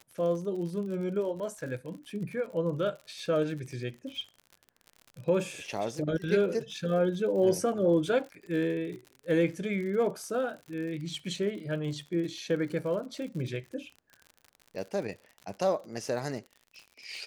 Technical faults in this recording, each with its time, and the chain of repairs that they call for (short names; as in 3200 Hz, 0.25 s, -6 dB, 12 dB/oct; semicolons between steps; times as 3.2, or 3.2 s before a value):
crackle 59/s -39 dBFS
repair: de-click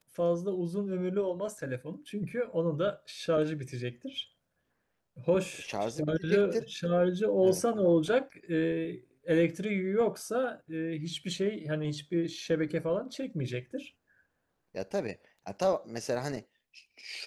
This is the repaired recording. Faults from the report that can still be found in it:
none